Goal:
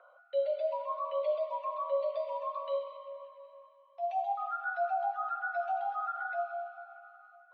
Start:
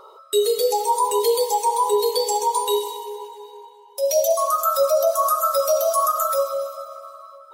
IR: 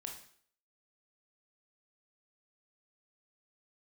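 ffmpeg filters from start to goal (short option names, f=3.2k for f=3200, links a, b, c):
-af "equalizer=f=970:t=o:w=1.7:g=-8,highpass=f=260:t=q:w=0.5412,highpass=f=260:t=q:w=1.307,lowpass=f=2.6k:t=q:w=0.5176,lowpass=f=2.6k:t=q:w=0.7071,lowpass=f=2.6k:t=q:w=1.932,afreqshift=140,volume=-8.5dB"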